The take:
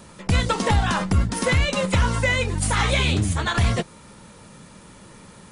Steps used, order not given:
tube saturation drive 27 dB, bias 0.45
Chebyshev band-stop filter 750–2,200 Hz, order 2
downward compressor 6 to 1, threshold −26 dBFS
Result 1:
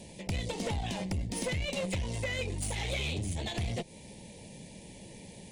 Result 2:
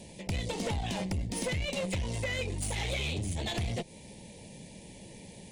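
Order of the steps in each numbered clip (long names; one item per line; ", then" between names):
downward compressor, then Chebyshev band-stop filter, then tube saturation
Chebyshev band-stop filter, then downward compressor, then tube saturation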